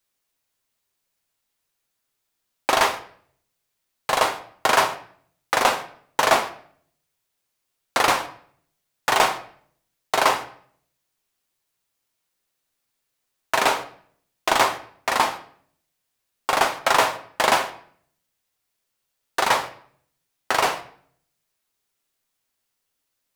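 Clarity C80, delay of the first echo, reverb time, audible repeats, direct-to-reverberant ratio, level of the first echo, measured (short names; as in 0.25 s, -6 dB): 17.0 dB, none, 0.55 s, none, 6.0 dB, none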